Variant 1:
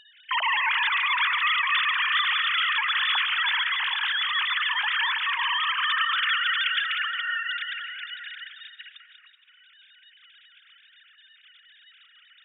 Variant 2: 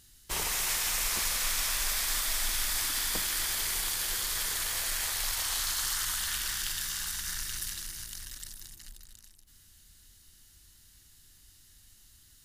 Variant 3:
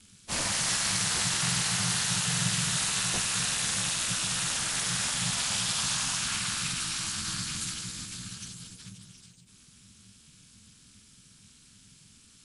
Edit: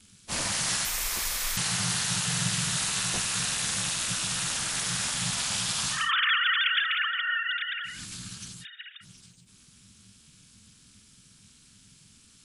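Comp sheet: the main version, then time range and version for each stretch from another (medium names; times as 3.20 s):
3
0.85–1.57 s: from 2
6.00–7.95 s: from 1, crossfade 0.24 s
8.63–9.03 s: from 1, crossfade 0.06 s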